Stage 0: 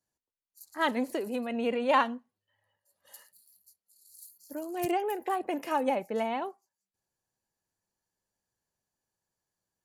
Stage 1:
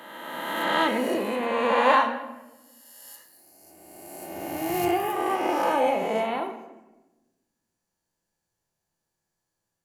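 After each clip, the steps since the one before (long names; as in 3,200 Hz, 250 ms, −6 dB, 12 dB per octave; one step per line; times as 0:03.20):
peak hold with a rise ahead of every peak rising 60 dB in 2.01 s
rectangular room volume 540 cubic metres, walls mixed, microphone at 0.77 metres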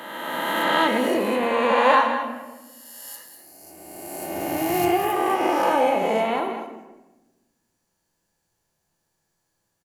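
in parallel at +2 dB: downward compressor, threshold −30 dBFS, peak gain reduction 14.5 dB
on the sum: single-tap delay 197 ms −11 dB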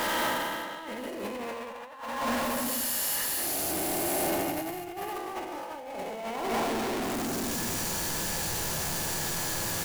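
converter with a step at zero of −21 dBFS
compressor whose output falls as the input rises −23 dBFS, ratio −0.5
level −7.5 dB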